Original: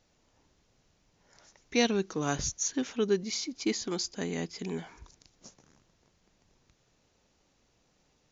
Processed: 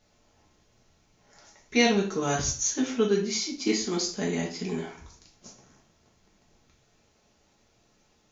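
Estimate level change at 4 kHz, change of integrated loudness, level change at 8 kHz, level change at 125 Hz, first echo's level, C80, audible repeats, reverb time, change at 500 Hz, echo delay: +4.5 dB, +4.5 dB, can't be measured, +4.5 dB, no echo audible, 13.0 dB, no echo audible, 0.45 s, +4.0 dB, no echo audible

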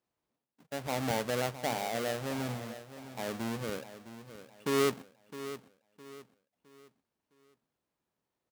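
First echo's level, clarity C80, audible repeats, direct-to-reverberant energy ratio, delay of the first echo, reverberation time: −13.0 dB, no reverb audible, 3, no reverb audible, 661 ms, no reverb audible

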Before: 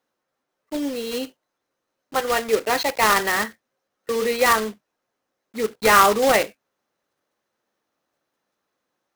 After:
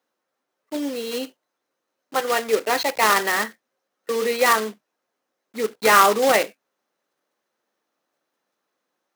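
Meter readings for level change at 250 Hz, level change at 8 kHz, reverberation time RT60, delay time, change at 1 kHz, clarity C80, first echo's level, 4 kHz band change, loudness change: −1.5 dB, 0.0 dB, no reverb audible, no echo audible, 0.0 dB, no reverb audible, no echo audible, 0.0 dB, 0.0 dB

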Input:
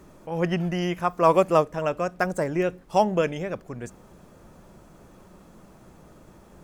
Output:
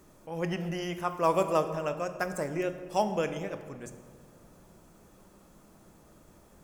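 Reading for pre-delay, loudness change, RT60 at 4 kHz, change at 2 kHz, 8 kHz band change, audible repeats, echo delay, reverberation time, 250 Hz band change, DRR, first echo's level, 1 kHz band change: 5 ms, −6.5 dB, 1.2 s, −6.0 dB, −1.5 dB, no echo audible, no echo audible, 1.8 s, −7.0 dB, 8.5 dB, no echo audible, −6.5 dB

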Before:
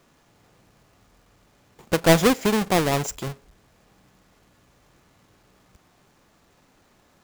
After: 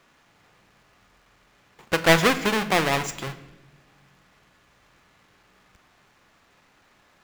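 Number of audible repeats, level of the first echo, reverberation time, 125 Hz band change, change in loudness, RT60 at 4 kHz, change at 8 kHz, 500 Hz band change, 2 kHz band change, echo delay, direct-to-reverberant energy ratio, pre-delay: no echo audible, no echo audible, 1.1 s, −4.0 dB, −0.5 dB, 0.95 s, −2.5 dB, −2.5 dB, +5.0 dB, no echo audible, 10.5 dB, 6 ms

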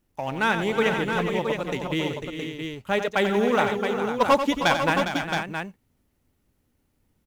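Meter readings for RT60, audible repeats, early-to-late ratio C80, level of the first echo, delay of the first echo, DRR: no reverb audible, 5, no reverb audible, −9.0 dB, 90 ms, no reverb audible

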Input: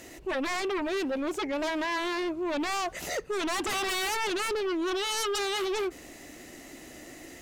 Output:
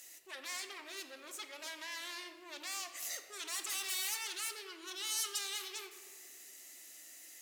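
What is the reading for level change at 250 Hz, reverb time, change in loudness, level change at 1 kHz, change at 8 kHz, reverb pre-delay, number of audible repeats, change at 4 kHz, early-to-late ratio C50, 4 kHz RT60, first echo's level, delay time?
−26.5 dB, 1.8 s, −10.0 dB, −17.5 dB, −1.5 dB, 6 ms, no echo audible, −6.5 dB, 9.0 dB, 1.0 s, no echo audible, no echo audible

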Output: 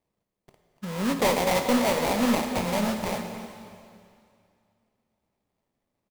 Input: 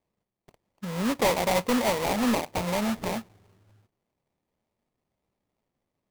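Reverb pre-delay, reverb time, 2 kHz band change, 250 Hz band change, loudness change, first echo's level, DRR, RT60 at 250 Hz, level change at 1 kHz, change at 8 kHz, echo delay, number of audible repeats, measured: 7 ms, 2.4 s, +1.5 dB, +1.5 dB, +1.5 dB, −18.0 dB, 4.5 dB, 2.4 s, +1.0 dB, +1.5 dB, 278 ms, 1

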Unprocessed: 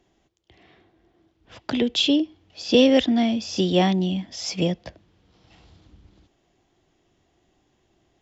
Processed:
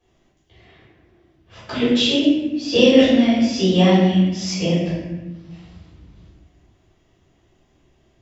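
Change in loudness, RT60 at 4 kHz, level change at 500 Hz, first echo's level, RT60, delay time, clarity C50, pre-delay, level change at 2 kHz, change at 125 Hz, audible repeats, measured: +5.0 dB, 0.80 s, +4.5 dB, no echo audible, 1.1 s, no echo audible, −1.0 dB, 3 ms, +5.5 dB, +7.5 dB, no echo audible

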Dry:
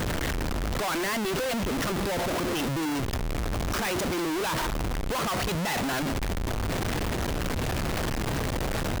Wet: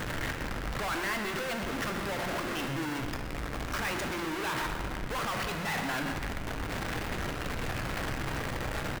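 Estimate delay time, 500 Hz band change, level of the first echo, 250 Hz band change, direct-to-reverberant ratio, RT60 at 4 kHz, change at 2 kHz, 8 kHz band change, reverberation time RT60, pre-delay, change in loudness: 125 ms, −6.5 dB, −12.5 dB, −6.5 dB, 4.0 dB, 1.3 s, −1.0 dB, −7.0 dB, 2.1 s, 4 ms, −5.0 dB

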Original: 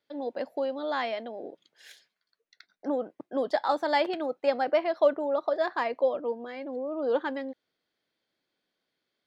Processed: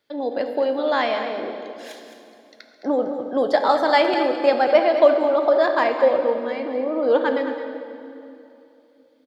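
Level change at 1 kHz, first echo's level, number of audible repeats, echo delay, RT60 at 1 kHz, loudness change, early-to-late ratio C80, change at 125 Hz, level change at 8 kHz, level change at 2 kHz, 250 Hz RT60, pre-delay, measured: +9.0 dB, −11.0 dB, 1, 214 ms, 2.6 s, +9.0 dB, 6.0 dB, can't be measured, can't be measured, +9.5 dB, 3.6 s, 6 ms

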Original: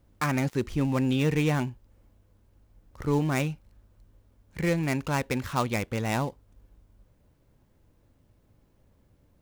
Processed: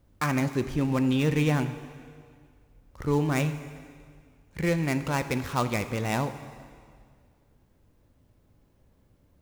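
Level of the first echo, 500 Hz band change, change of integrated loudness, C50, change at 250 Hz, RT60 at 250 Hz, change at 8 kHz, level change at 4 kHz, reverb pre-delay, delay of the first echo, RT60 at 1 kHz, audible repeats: no echo audible, +0.5 dB, +0.5 dB, 11.0 dB, +1.0 dB, 2.0 s, +0.5 dB, +0.5 dB, 7 ms, no echo audible, 2.0 s, no echo audible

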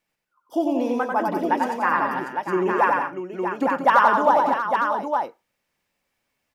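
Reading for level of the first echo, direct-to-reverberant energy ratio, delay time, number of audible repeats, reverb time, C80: −3.0 dB, no reverb audible, 93 ms, 5, no reverb audible, no reverb audible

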